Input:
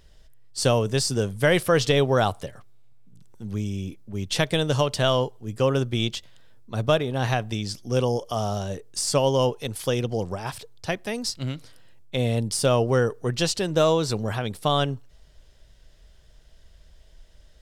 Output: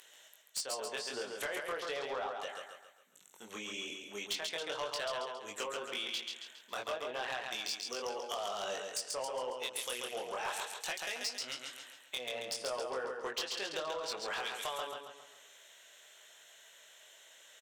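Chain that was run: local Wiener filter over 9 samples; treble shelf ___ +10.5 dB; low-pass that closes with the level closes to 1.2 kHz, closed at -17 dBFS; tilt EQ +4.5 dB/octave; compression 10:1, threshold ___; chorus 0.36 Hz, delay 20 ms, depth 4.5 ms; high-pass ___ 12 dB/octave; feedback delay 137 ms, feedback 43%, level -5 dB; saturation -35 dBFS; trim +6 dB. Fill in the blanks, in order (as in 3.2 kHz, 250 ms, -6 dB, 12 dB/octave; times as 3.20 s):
4.1 kHz, -35 dBFS, 460 Hz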